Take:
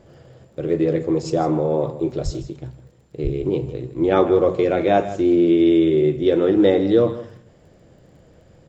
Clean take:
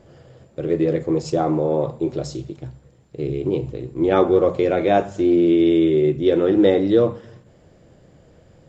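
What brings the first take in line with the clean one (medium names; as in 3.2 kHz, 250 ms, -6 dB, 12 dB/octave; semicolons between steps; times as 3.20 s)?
de-click; de-plosive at 2.24/3.23 s; inverse comb 158 ms -14.5 dB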